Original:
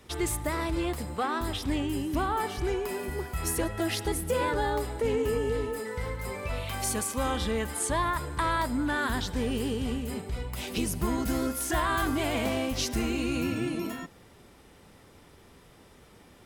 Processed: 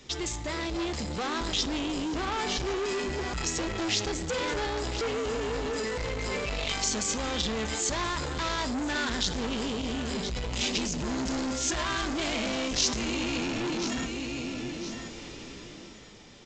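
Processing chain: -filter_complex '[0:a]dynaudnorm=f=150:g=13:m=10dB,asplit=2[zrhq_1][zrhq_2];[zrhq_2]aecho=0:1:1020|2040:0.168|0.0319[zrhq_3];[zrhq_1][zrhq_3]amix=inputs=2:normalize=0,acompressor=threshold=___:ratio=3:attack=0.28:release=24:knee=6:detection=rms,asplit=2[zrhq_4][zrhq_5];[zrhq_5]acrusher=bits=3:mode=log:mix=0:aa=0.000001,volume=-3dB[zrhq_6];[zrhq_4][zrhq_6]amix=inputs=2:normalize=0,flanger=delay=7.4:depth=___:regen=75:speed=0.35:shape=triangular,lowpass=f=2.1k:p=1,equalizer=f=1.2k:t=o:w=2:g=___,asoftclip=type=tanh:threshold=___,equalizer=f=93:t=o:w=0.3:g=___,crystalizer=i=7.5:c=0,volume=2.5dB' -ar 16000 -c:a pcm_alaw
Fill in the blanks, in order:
-25dB, 2.7, -7.5, -31.5dB, -14.5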